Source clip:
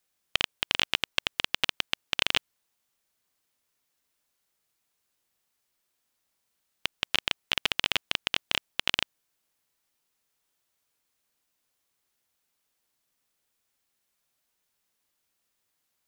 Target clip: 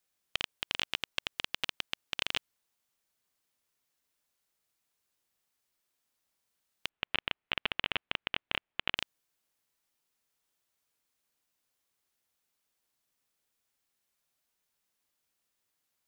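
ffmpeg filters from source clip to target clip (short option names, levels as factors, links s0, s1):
-filter_complex "[0:a]asettb=1/sr,asplit=3[s0][s1][s2];[s0]atrim=end=6.894[s3];[s1]atrim=start=6.89:end=8.97,asetpts=PTS-STARTPTS,afade=t=in:d=0.004:c=qsin,afade=t=out:st=2.076:d=0.004:c=qsin,lowpass=f=3000:w=0.5412,lowpass=f=3000:w=1.3066[s4];[s2]atrim=start=8.966[s5];[s3][s4]acrossfade=d=0.004:c1=hsin:c2=qsin[s6];[s6][s5]acrossfade=d=0.004:c1=qsin:c2=hsin,alimiter=limit=0.376:level=0:latency=1:release=51,volume=0.668"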